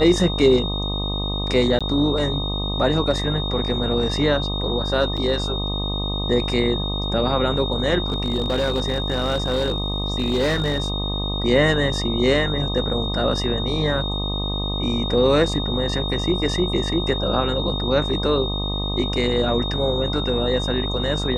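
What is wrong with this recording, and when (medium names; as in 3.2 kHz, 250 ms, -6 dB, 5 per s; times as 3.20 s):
buzz 50 Hz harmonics 25 -26 dBFS
whine 3.7 kHz -27 dBFS
1.79–1.81 s: dropout 16 ms
5.17–5.18 s: dropout 5.7 ms
8.08–10.90 s: clipped -16 dBFS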